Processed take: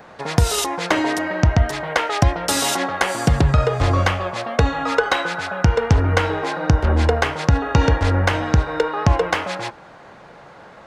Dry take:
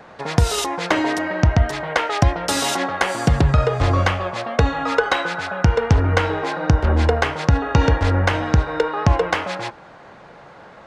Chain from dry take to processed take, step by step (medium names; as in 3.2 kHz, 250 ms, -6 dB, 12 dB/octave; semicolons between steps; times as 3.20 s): treble shelf 10 kHz +9 dB